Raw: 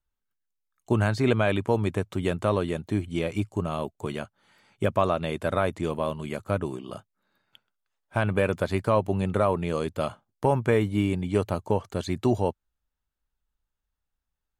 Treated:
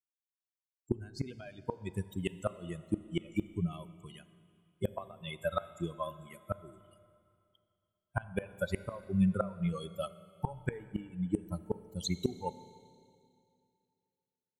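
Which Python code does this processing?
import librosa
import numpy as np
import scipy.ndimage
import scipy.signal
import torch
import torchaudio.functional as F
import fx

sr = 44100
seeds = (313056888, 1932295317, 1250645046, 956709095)

y = fx.bin_expand(x, sr, power=3.0)
y = fx.gate_flip(y, sr, shuts_db=-24.0, range_db=-25)
y = fx.rev_schroeder(y, sr, rt60_s=2.5, comb_ms=28, drr_db=14.5)
y = y * librosa.db_to_amplitude(6.5)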